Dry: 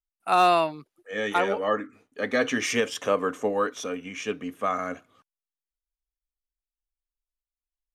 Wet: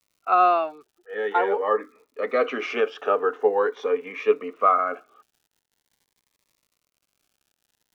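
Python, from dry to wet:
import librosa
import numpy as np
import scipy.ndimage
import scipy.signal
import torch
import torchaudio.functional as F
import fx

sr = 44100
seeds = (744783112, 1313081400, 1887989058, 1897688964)

y = fx.cabinet(x, sr, low_hz=270.0, low_slope=24, high_hz=3500.0, hz=(280.0, 430.0, 780.0, 1300.0, 3200.0), db=(-6, 10, 5, 7, -5))
y = fx.rider(y, sr, range_db=4, speed_s=0.5)
y = fx.peak_eq(y, sr, hz=1000.0, db=5.0, octaves=0.83)
y = fx.dmg_crackle(y, sr, seeds[0], per_s=160.0, level_db=-51.0)
y = fx.notch_cascade(y, sr, direction='rising', hz=0.45)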